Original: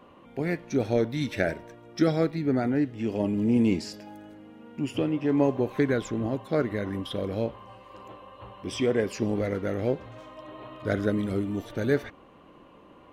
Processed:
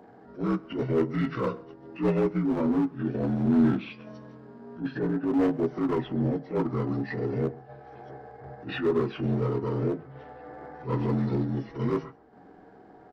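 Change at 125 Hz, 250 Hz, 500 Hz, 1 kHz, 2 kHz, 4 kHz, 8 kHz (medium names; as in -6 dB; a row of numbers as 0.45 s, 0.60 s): +1.5 dB, 0.0 dB, -1.5 dB, +1.0 dB, -5.0 dB, -6.5 dB, under -15 dB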